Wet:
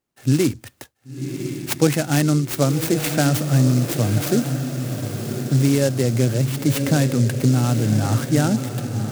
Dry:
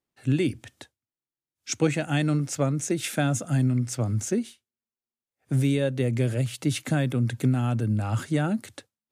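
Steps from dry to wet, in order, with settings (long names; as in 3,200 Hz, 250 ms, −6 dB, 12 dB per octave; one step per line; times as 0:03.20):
feedback delay with all-pass diffusion 1,062 ms, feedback 52%, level −7.5 dB
short delay modulated by noise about 5,800 Hz, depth 0.066 ms
level +6 dB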